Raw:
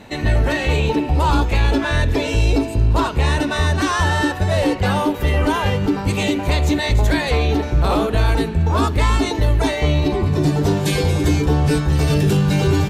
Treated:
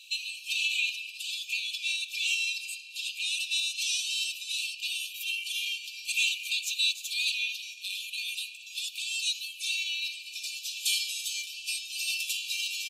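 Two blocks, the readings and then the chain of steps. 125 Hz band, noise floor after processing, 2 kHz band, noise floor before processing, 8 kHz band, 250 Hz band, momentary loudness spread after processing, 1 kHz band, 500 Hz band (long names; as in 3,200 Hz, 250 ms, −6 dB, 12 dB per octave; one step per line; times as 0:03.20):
below −40 dB, −46 dBFS, −7.5 dB, −26 dBFS, −0.5 dB, below −40 dB, 8 LU, below −40 dB, below −40 dB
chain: comb filter 4.1 ms, depth 56%
brickwall limiter −10.5 dBFS, peak gain reduction 6 dB
linear-phase brick-wall high-pass 2,300 Hz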